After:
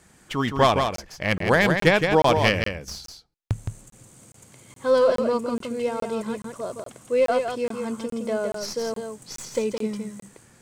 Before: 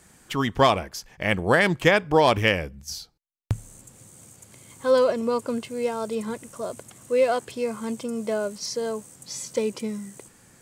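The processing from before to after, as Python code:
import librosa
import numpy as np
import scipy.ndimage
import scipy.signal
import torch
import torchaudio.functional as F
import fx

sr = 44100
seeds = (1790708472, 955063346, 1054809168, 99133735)

y = fx.tracing_dist(x, sr, depth_ms=0.077)
y = fx.high_shelf(y, sr, hz=9100.0, db=-7.5)
y = y + 10.0 ** (-5.5 / 20.0) * np.pad(y, (int(166 * sr / 1000.0), 0))[:len(y)]
y = fx.buffer_crackle(y, sr, first_s=0.96, period_s=0.42, block=1024, kind='zero')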